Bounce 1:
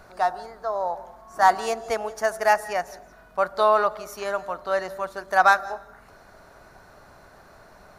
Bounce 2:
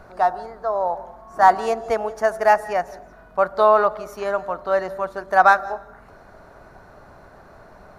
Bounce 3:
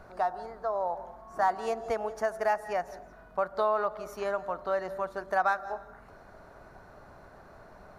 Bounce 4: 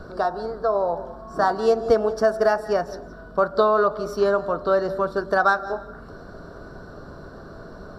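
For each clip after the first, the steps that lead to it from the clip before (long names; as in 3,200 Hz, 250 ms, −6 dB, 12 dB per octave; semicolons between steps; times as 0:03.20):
high-shelf EQ 2,200 Hz −11.5 dB; level +5.5 dB
downward compressor 2 to 1, threshold −23 dBFS, peak gain reduction 8.5 dB; level −5.5 dB
convolution reverb RT60 0.20 s, pre-delay 3 ms, DRR 12 dB; level +4.5 dB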